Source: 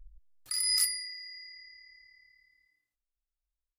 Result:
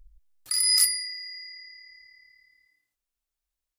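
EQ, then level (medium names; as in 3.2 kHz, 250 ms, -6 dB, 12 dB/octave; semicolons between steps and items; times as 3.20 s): tone controls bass +3 dB, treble +2 dB; bass shelf 130 Hz -10 dB; +5.0 dB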